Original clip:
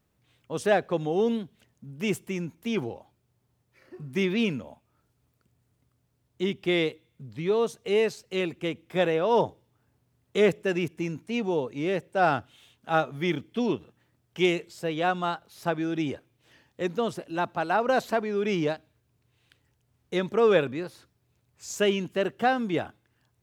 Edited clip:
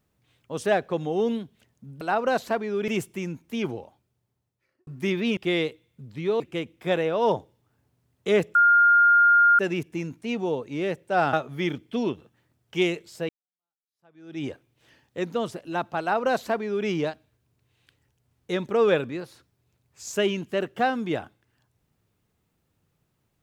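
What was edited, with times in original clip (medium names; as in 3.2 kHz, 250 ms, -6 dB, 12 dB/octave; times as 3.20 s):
2.90–4.00 s: fade out
4.50–6.58 s: delete
7.61–8.49 s: delete
10.64 s: add tone 1.41 kHz -13.5 dBFS 1.04 s
12.38–12.96 s: delete
14.92–16.07 s: fade in exponential
17.63–18.50 s: copy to 2.01 s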